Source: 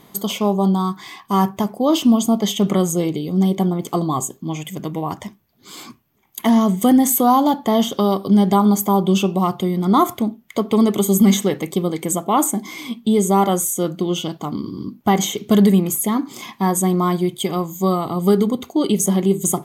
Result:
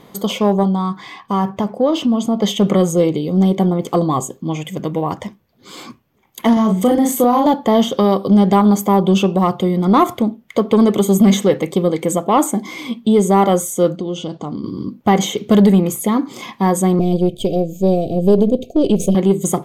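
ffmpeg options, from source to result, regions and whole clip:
-filter_complex "[0:a]asettb=1/sr,asplit=3[a][b][c];[a]atrim=end=0.634[d];[b]atrim=start=0.63:end=2.42,asetpts=PTS-STARTPTS,afade=t=in:d=0.004:c=qsin,afade=t=out:st=1.786:d=0.004:c=qsin,bandreject=f=360:w=9.4,acompressor=threshold=-19dB:ratio=2:attack=3.2:release=140:knee=1:detection=peak,highshelf=f=6.9k:g=-9[e];[c]atrim=start=2.416[f];[d][e]acrossfade=d=0.004:c1=hsin:c2=qsin[g];[g][f]acrossfade=d=0.004:c1=qsin:c2=hsin,asettb=1/sr,asplit=3[h][i][j];[h]atrim=end=6.534[k];[i]atrim=start=6.53:end=7.46,asetpts=PTS-STARTPTS,afade=t=in:d=0.004:c=qsin,afade=t=out:st=0.926:d=0.004:c=qsin,asplit=2[l][m];[m]adelay=37,volume=-2.5dB[n];[l][n]amix=inputs=2:normalize=0,atrim=end_sample=41013,acompressor=threshold=-15dB:ratio=3:attack=3.2:release=140:knee=1:detection=peak[o];[j]atrim=start=7.456[p];[k][o]acrossfade=d=0.004:c1=hsin:c2=qsin[q];[q][p]acrossfade=d=0.004:c1=qsin:c2=hsin,asettb=1/sr,asplit=3[r][s][t];[r]atrim=end=13.964[u];[s]atrim=start=13.96:end=14.64,asetpts=PTS-STARTPTS,afade=t=in:d=0.004:c=qsin,afade=t=out:st=0.676:d=0.004:c=qsin,equalizer=f=1.9k:w=0.69:g=-6,acompressor=threshold=-26dB:ratio=2.5:attack=3.2:release=140:knee=1:detection=peak,lowpass=f=8.3k:w=0.5412,lowpass=f=8.3k:w=1.3066[v];[t]atrim=start=14.636[w];[u][v]acrossfade=d=0.004:c1=hsin:c2=qsin[x];[x][w]acrossfade=d=0.004:c1=qsin:c2=hsin,asettb=1/sr,asplit=3[y][z][aa];[y]atrim=end=16.994[ab];[z]atrim=start=16.99:end=19.15,asetpts=PTS-STARTPTS,afade=t=in:d=0.004:c=qsin,afade=t=out:st=2.156:d=0.004:c=qsin,aeval=exprs='if(lt(val(0),0),0.447*val(0),val(0))':c=same,asuperstop=centerf=1300:order=20:qfactor=0.79,tiltshelf=f=1.4k:g=3[ac];[aa]atrim=start=19.146[ad];[ab][ac]acrossfade=d=0.004:c1=hsin:c2=qsin[ae];[ae][ad]acrossfade=d=0.004:c1=qsin:c2=hsin,highshelf=f=7.4k:g=-11.5,acontrast=43,equalizer=f=510:w=5.6:g=8.5,volume=-2dB"

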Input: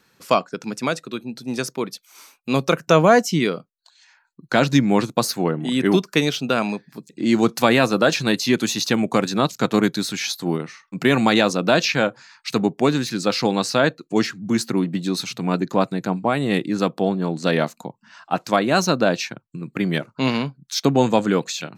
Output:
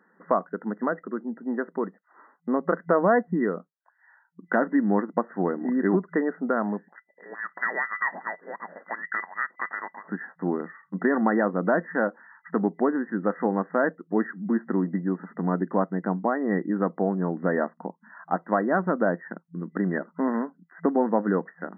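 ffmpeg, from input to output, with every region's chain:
-filter_complex "[0:a]asettb=1/sr,asplit=3[a][b][c];[a]atrim=end=6.884[d];[b]atrim=start=6.88:end=10.08,asetpts=PTS-STARTPTS,afade=t=in:d=0.004:c=qsin,afade=t=out:st=3.196:d=0.004:c=qsin,equalizer=f=190:w=2.2:g=7,acompressor=threshold=-16dB:ratio=4:attack=3.2:release=140:knee=1:detection=peak,lowpass=f=2.1k:t=q:w=0.5098,lowpass=f=2.1k:t=q:w=0.6013,lowpass=f=2.1k:t=q:w=0.9,lowpass=f=2.1k:t=q:w=2.563,afreqshift=-2500[e];[c]atrim=start=10.076[f];[d][e]acrossfade=d=0.004:c1=hsin:c2=qsin[g];[g][f]acrossfade=d=0.004:c1=qsin:c2=hsin,afftfilt=real='re*between(b*sr/4096,170,2000)':imag='im*between(b*sr/4096,170,2000)':win_size=4096:overlap=0.75,acompressor=threshold=-27dB:ratio=1.5"

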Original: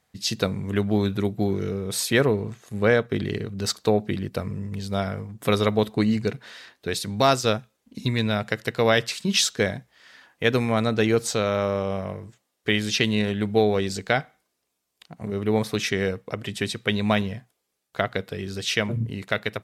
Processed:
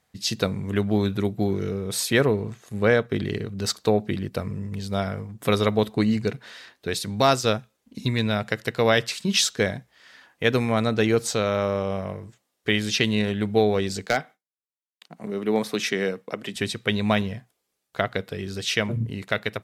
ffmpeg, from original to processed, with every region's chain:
-filter_complex "[0:a]asettb=1/sr,asplit=3[a][b][c];[a]atrim=end=14.064[d];[b]atrim=start=14.06:end=16.56,asetpts=PTS-STARTPTS,afade=t=in:d=0.004:c=qsin,afade=t=out:st=2.496:d=0.004:c=qsin,agate=range=-33dB:threshold=-57dB:ratio=3:release=100:detection=peak,highpass=f=170:w=0.5412,highpass=f=170:w=1.3066,aeval=exprs='0.282*(abs(mod(val(0)/0.282+3,4)-2)-1)':c=same[e];[c]atrim=start=16.556[f];[d][e]acrossfade=d=0.004:c1=hsin:c2=qsin[g];[g][f]acrossfade=d=0.004:c1=qsin:c2=hsin"

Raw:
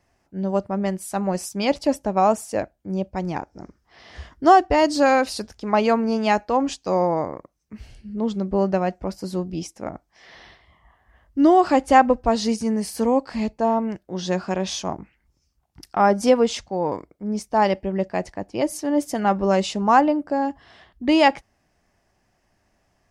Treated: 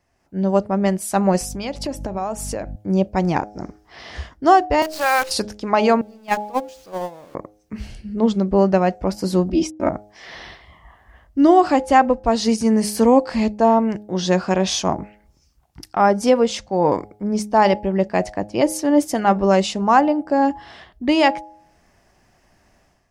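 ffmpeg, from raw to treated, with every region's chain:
-filter_complex "[0:a]asettb=1/sr,asplit=3[a][b][c];[a]atrim=end=1.414[d];[b]atrim=start=1.41:end=2.76,asetpts=PTS-STARTPTS,afade=t=in:d=0.004:c=qsin,afade=t=out:st=1.346:d=0.004:c=qsin,aeval=exprs='val(0)+0.0141*(sin(2*PI*50*n/s)+sin(2*PI*2*50*n/s)/2+sin(2*PI*3*50*n/s)/3+sin(2*PI*4*50*n/s)/4+sin(2*PI*5*50*n/s)/5)':c=same,acompressor=threshold=-32dB:ratio=5:attack=3.2:release=140:knee=1:detection=peak[e];[c]atrim=start=2.756[f];[d][e]acrossfade=d=0.004:c1=hsin:c2=qsin[g];[g][f]acrossfade=d=0.004:c1=qsin:c2=hsin,asettb=1/sr,asplit=3[h][i][j];[h]atrim=end=4.824[k];[i]atrim=start=4.82:end=5.31,asetpts=PTS-STARTPTS,afade=t=in:d=0.004:c=qsin,afade=t=out:st=0.486:d=0.004:c=qsin,highpass=1k,highshelf=f=3.6k:g=-10.5,acrusher=bits=6:dc=4:mix=0:aa=0.000001[l];[j]atrim=start=5.306[m];[k][l]acrossfade=d=0.004:c1=hsin:c2=qsin[n];[n][m]acrossfade=d=0.004:c1=qsin:c2=hsin,asettb=1/sr,asplit=3[o][p][q];[o]atrim=end=6.014[r];[p]atrim=start=6.01:end=7.35,asetpts=PTS-STARTPTS,afade=t=in:d=0.004:c=qsin,afade=t=out:st=1.336:d=0.004:c=qsin,aeval=exprs='val(0)+0.5*0.0668*sgn(val(0))':c=same,agate=range=-30dB:threshold=-15dB:ratio=16:release=100:detection=peak[s];[q]atrim=start=7.346[t];[r][s]acrossfade=d=0.004:c1=hsin:c2=qsin[u];[u][t]acrossfade=d=0.004:c1=qsin:c2=hsin,asettb=1/sr,asplit=3[v][w][x];[v]atrim=end=9.494[y];[w]atrim=start=9.49:end=9.89,asetpts=PTS-STARTPTS,afade=t=in:d=0.004:c=qsin,afade=t=out:st=0.396:d=0.004:c=qsin,lowpass=f=3.4k:p=1,agate=range=-47dB:threshold=-46dB:ratio=16:release=100:detection=peak,aecho=1:1:3.2:0.96,atrim=end_sample=17640[z];[x]atrim=start=9.886[aa];[y][z]acrossfade=d=0.004:c1=hsin:c2=qsin[ab];[ab][aa]acrossfade=d=0.004:c1=qsin:c2=hsin,bandreject=f=104.5:t=h:w=4,bandreject=f=209:t=h:w=4,bandreject=f=313.5:t=h:w=4,bandreject=f=418:t=h:w=4,bandreject=f=522.5:t=h:w=4,bandreject=f=627:t=h:w=4,bandreject=f=731.5:t=h:w=4,bandreject=f=836:t=h:w=4,dynaudnorm=f=110:g=5:m=11dB,volume=-2dB"

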